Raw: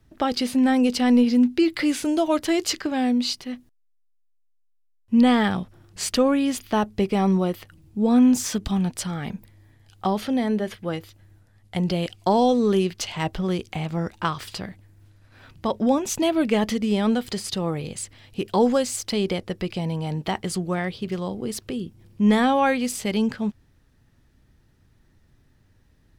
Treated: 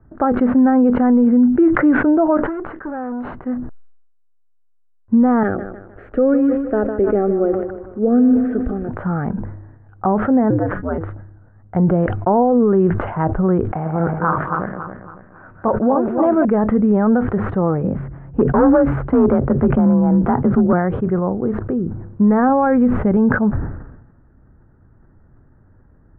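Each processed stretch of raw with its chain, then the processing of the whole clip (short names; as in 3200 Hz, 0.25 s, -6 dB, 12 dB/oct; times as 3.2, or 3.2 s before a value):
2.37–3.34 HPF 430 Hz 6 dB/oct + tube stage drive 32 dB, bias 0.35
5.43–8.89 fixed phaser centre 400 Hz, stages 4 + lo-fi delay 0.154 s, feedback 55%, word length 8-bit, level -11 dB
10.5–10.98 ring modulator 90 Hz + de-hum 208.3 Hz, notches 32
13.72–16.45 regenerating reverse delay 0.139 s, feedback 60%, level -5 dB + low shelf 240 Hz -8.5 dB
17.83–20.73 low shelf 200 Hz +9 dB + frequency shift +37 Hz + overloaded stage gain 16.5 dB
22.49–23.17 low shelf 230 Hz +8 dB + notch 720 Hz, Q 22
whole clip: elliptic low-pass 1500 Hz, stop band 70 dB; maximiser +15.5 dB; sustainer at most 57 dB/s; gain -6 dB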